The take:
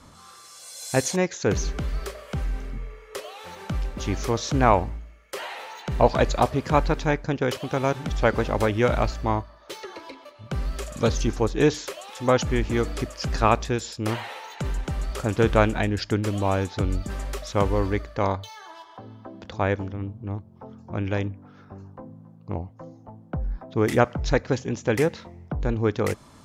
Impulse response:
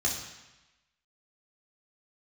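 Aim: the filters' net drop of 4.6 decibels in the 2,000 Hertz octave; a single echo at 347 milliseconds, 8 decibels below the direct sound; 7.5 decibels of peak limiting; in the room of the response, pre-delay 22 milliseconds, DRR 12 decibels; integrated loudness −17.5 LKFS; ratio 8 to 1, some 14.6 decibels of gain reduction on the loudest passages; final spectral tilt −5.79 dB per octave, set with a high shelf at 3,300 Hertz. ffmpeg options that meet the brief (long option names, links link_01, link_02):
-filter_complex "[0:a]equalizer=frequency=2000:width_type=o:gain=-5,highshelf=frequency=3300:gain=-4,acompressor=threshold=-28dB:ratio=8,alimiter=limit=-24dB:level=0:latency=1,aecho=1:1:347:0.398,asplit=2[link_01][link_02];[1:a]atrim=start_sample=2205,adelay=22[link_03];[link_02][link_03]afir=irnorm=-1:irlink=0,volume=-19.5dB[link_04];[link_01][link_04]amix=inputs=2:normalize=0,volume=18dB"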